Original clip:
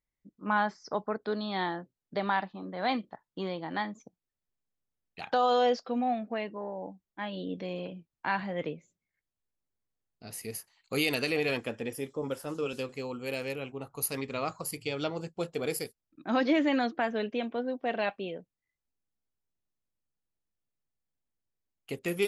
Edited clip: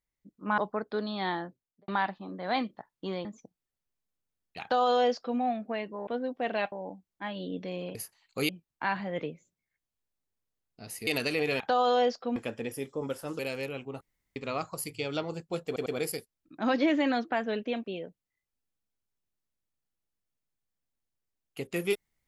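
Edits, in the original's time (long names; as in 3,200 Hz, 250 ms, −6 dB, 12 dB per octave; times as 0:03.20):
0:00.58–0:00.92: remove
0:01.80–0:02.22: fade out and dull
0:03.59–0:03.87: remove
0:05.24–0:06.00: duplicate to 0:11.57
0:10.50–0:11.04: move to 0:07.92
0:12.60–0:13.26: remove
0:13.88–0:14.23: fill with room tone
0:15.53: stutter 0.10 s, 3 plays
0:17.51–0:18.16: move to 0:06.69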